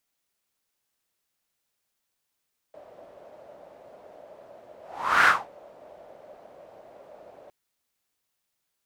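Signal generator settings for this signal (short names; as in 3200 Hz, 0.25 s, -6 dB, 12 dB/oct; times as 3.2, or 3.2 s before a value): whoosh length 4.76 s, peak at 2.52, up 0.49 s, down 0.25 s, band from 600 Hz, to 1500 Hz, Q 5.4, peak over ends 32 dB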